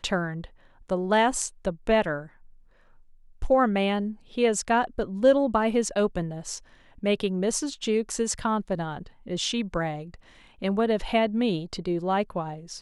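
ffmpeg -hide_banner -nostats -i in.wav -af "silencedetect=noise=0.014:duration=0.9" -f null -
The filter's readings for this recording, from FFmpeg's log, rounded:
silence_start: 2.26
silence_end: 3.42 | silence_duration: 1.16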